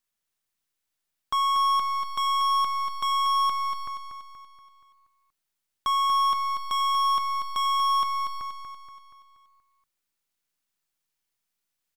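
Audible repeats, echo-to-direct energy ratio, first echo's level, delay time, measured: 5, -5.5 dB, -6.5 dB, 0.238 s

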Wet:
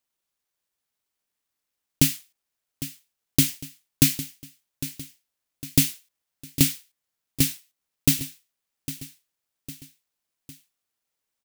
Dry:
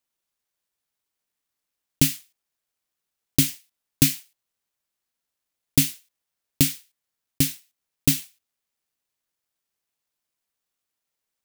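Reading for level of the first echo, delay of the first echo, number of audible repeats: -14.0 dB, 0.805 s, 3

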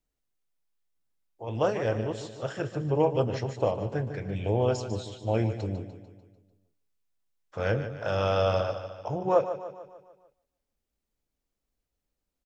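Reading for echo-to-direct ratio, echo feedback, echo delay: -9.0 dB, 52%, 0.148 s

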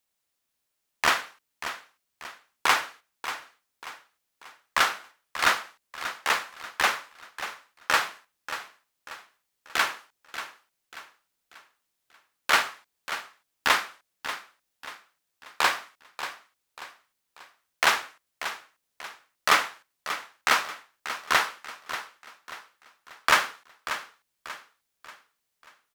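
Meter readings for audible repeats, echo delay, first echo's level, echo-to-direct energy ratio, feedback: 4, 0.587 s, -11.5 dB, -10.5 dB, 41%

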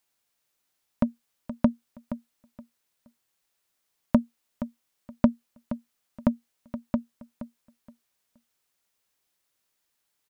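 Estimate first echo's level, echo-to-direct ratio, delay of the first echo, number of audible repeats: -12.5 dB, -12.5 dB, 0.472 s, 2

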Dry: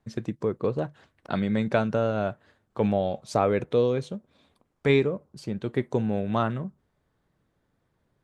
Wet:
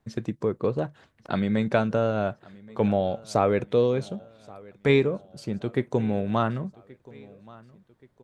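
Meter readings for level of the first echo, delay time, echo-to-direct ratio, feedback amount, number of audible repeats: -23.0 dB, 1.127 s, -22.0 dB, 49%, 2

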